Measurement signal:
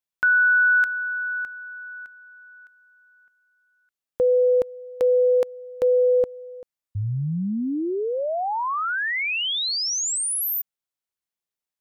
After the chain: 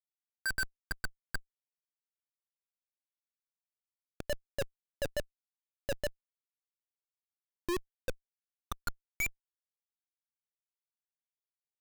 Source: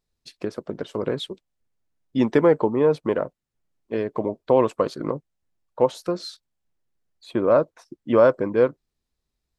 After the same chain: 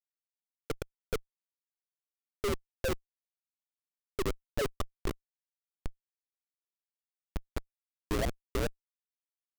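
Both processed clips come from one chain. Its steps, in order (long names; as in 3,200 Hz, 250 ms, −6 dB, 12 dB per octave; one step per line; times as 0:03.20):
dynamic equaliser 2,800 Hz, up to −4 dB, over −42 dBFS, Q 3.8
frequency shifter +72 Hz
LFO wah 2.3 Hz 350–2,300 Hz, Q 7.7
phaser with its sweep stopped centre 340 Hz, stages 4
comparator with hysteresis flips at −30.5 dBFS
level +9 dB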